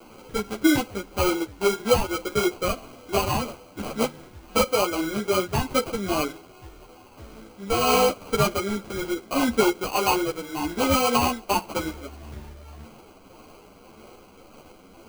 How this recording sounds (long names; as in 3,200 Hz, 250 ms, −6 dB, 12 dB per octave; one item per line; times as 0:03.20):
a quantiser's noise floor 8 bits, dither none
tremolo triangle 1.8 Hz, depth 40%
aliases and images of a low sample rate 1,800 Hz, jitter 0%
a shimmering, thickened sound